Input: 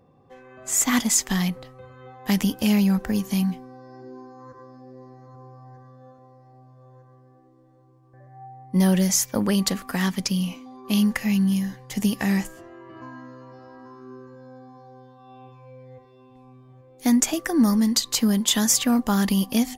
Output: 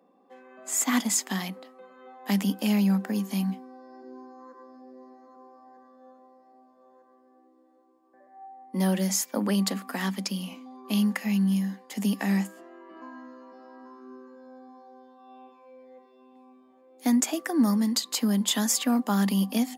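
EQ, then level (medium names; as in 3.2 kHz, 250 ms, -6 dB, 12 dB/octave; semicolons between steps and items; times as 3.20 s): rippled Chebyshev high-pass 190 Hz, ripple 3 dB; band-stop 5.9 kHz, Q 12; -2.0 dB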